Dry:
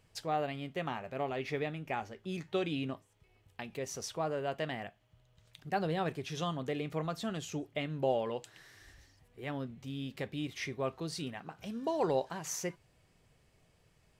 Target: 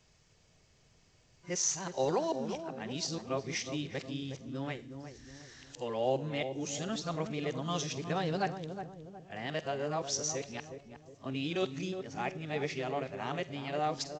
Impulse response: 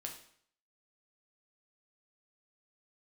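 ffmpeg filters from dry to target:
-filter_complex "[0:a]areverse,equalizer=frequency=6000:width_type=o:width=0.96:gain=9.5,asplit=2[link_01][link_02];[link_02]adelay=364,lowpass=frequency=840:poles=1,volume=-7dB,asplit=2[link_03][link_04];[link_04]adelay=364,lowpass=frequency=840:poles=1,volume=0.46,asplit=2[link_05][link_06];[link_06]adelay=364,lowpass=frequency=840:poles=1,volume=0.46,asplit=2[link_07][link_08];[link_08]adelay=364,lowpass=frequency=840:poles=1,volume=0.46,asplit=2[link_09][link_10];[link_10]adelay=364,lowpass=frequency=840:poles=1,volume=0.46[link_11];[link_01][link_03][link_05][link_07][link_09][link_11]amix=inputs=6:normalize=0,asplit=2[link_12][link_13];[1:a]atrim=start_sample=2205,highshelf=frequency=2600:gain=11.5,adelay=46[link_14];[link_13][link_14]afir=irnorm=-1:irlink=0,volume=-18.5dB[link_15];[link_12][link_15]amix=inputs=2:normalize=0" -ar 16000 -c:a g722

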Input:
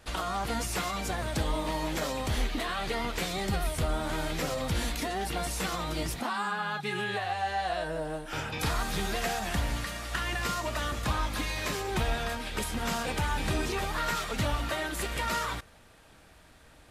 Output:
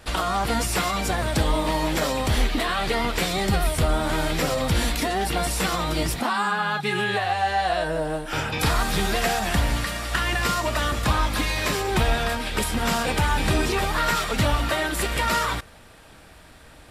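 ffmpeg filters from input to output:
ffmpeg -i in.wav -af "bandreject=frequency=6400:width=17,volume=8dB" out.wav

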